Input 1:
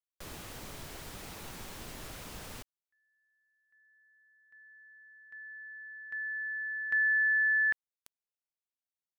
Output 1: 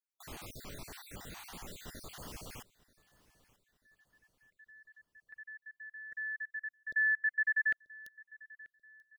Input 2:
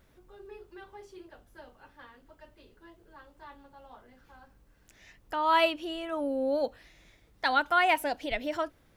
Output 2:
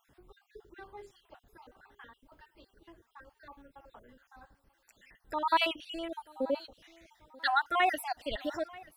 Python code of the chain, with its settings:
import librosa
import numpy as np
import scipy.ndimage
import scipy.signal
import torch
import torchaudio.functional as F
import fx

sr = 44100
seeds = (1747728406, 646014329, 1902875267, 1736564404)

p1 = fx.spec_dropout(x, sr, seeds[0], share_pct=49)
p2 = fx.dynamic_eq(p1, sr, hz=1500.0, q=3.9, threshold_db=-49.0, ratio=4.0, max_db=-3)
y = p2 + fx.echo_feedback(p2, sr, ms=936, feedback_pct=39, wet_db=-22.0, dry=0)